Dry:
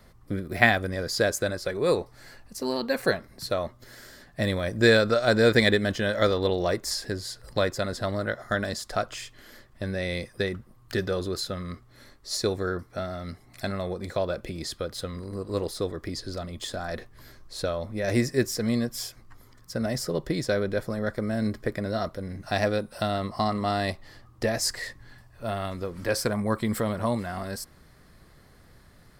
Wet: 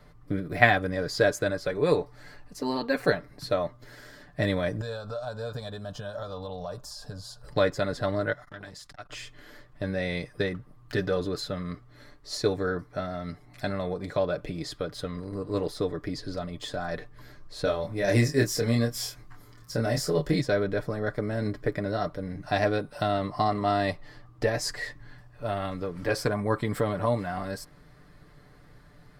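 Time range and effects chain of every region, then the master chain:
4.81–7.43 s: static phaser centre 850 Hz, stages 4 + compression, threshold -33 dBFS
8.33–9.10 s: peaking EQ 450 Hz -10 dB 2.1 oct + compression 2.5:1, threshold -38 dBFS + transformer saturation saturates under 750 Hz
17.64–20.41 s: treble shelf 4.5 kHz +7.5 dB + doubling 26 ms -4 dB
whole clip: treble shelf 4.9 kHz -11 dB; comb 6.8 ms, depth 58%

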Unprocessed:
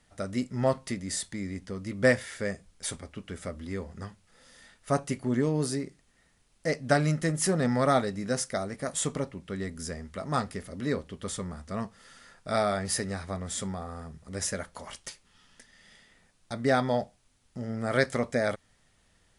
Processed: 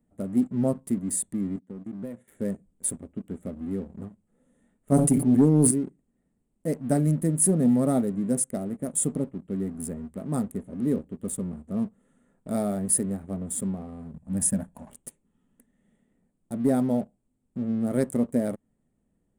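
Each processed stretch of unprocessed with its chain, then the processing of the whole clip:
1.56–2.28 s: gate -41 dBFS, range -11 dB + compression 3:1, threshold -40 dBFS + high-pass 110 Hz 24 dB/octave
4.91–5.71 s: comb 6.9 ms, depth 98% + decay stretcher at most 67 dB/s
14.14–14.90 s: dynamic bell 190 Hz, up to +5 dB, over -49 dBFS, Q 1.8 + comb 1.2 ms, depth 73%
whole clip: local Wiener filter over 9 samples; FFT filter 100 Hz 0 dB, 230 Hz +12 dB, 1.5 kHz -12 dB, 5.6 kHz -11 dB, 9.1 kHz +14 dB; waveshaping leveller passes 1; trim -6.5 dB

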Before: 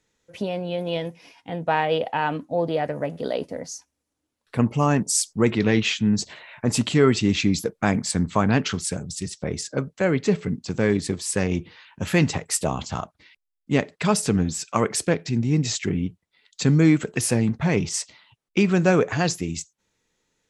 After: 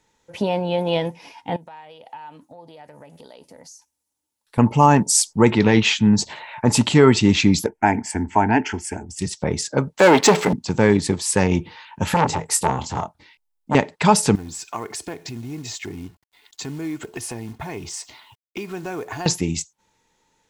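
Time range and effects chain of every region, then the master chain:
1.56–4.58 s: pre-emphasis filter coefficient 0.8 + compression 12:1, threshold -45 dBFS
7.66–9.19 s: treble shelf 8.1 kHz -11.5 dB + static phaser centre 790 Hz, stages 8
9.99–10.53 s: treble shelf 6.6 kHz +7.5 dB + waveshaping leveller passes 3 + high-pass 310 Hz
12.14–13.75 s: peaking EQ 2.3 kHz -4.5 dB 2.8 oct + doubling 24 ms -8 dB + transformer saturation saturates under 1.3 kHz
14.35–19.26 s: compression 3:1, threshold -38 dBFS + companded quantiser 6-bit + comb 2.8 ms, depth 49%
whole clip: peaking EQ 890 Hz +13 dB 0.25 oct; loudness maximiser +6 dB; trim -1 dB

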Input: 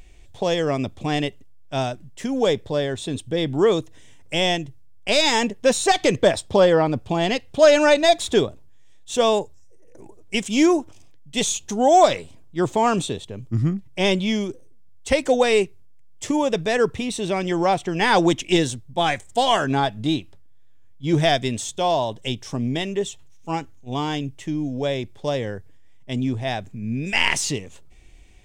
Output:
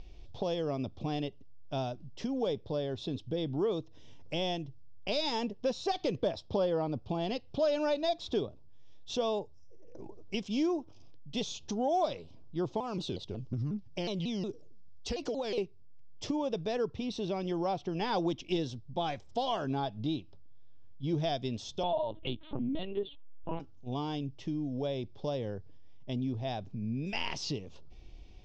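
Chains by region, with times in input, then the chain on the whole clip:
12.80–15.58 s: treble shelf 6.4 kHz +11 dB + compression, threshold -21 dBFS + vibrato with a chosen wave saw down 5.5 Hz, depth 250 cents
21.83–23.60 s: comb 3.2 ms, depth 74% + LPC vocoder at 8 kHz pitch kept
whole clip: elliptic low-pass 5.3 kHz, stop band 70 dB; peaking EQ 1.9 kHz -13.5 dB 0.98 oct; compression 2:1, threshold -38 dBFS

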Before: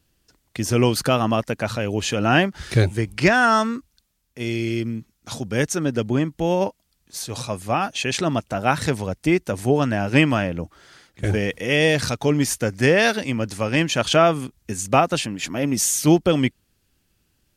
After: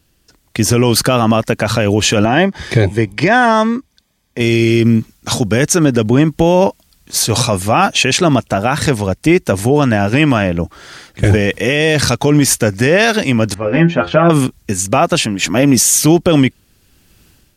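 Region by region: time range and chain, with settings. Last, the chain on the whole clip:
2.25–4.41 s: treble shelf 5.9 kHz -10.5 dB + comb of notches 1.4 kHz
13.54–14.30 s: low-pass 1.6 kHz + inharmonic resonator 84 Hz, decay 0.23 s, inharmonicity 0.002
whole clip: level rider; peak limiter -9.5 dBFS; trim +8 dB

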